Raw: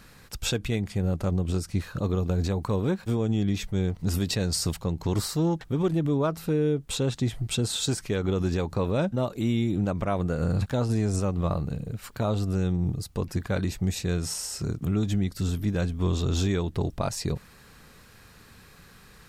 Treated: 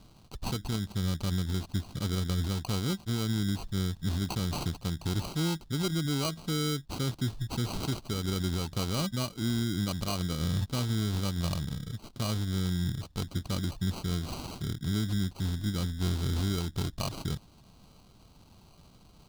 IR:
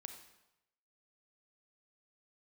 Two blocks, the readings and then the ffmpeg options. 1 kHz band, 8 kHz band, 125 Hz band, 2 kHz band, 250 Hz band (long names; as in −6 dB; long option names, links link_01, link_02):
−4.5 dB, −5.0 dB, −4.0 dB, −3.5 dB, −5.0 dB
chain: -af "acrusher=samples=25:mix=1:aa=0.000001,equalizer=frequency=500:width_type=o:width=1:gain=-8,equalizer=frequency=2000:width_type=o:width=1:gain=-9,equalizer=frequency=4000:width_type=o:width=1:gain=8,volume=-3.5dB"